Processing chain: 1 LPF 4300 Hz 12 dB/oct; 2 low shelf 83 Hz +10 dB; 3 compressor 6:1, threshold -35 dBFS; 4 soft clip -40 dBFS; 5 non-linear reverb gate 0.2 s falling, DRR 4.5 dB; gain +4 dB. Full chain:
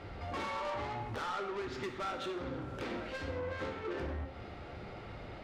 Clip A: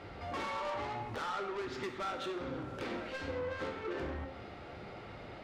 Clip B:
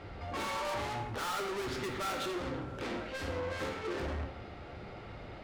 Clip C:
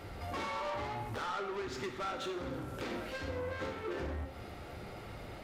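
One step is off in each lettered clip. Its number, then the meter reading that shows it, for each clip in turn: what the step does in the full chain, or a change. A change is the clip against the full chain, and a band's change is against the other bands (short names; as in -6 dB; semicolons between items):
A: 2, 125 Hz band -3.0 dB; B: 3, momentary loudness spread change +2 LU; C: 1, 8 kHz band +4.0 dB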